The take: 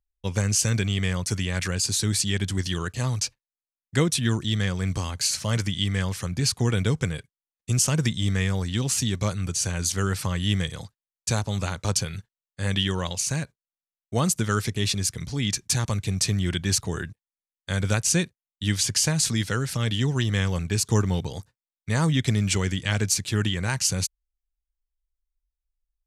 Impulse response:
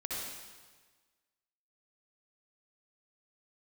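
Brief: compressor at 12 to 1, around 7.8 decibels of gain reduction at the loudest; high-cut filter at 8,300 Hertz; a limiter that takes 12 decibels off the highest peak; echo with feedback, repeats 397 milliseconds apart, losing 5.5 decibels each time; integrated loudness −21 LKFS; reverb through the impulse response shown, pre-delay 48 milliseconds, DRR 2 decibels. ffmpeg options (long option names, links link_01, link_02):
-filter_complex "[0:a]lowpass=8300,acompressor=threshold=-25dB:ratio=12,alimiter=level_in=0.5dB:limit=-24dB:level=0:latency=1,volume=-0.5dB,aecho=1:1:397|794|1191|1588|1985|2382|2779:0.531|0.281|0.149|0.079|0.0419|0.0222|0.0118,asplit=2[link_01][link_02];[1:a]atrim=start_sample=2205,adelay=48[link_03];[link_02][link_03]afir=irnorm=-1:irlink=0,volume=-5dB[link_04];[link_01][link_04]amix=inputs=2:normalize=0,volume=11dB"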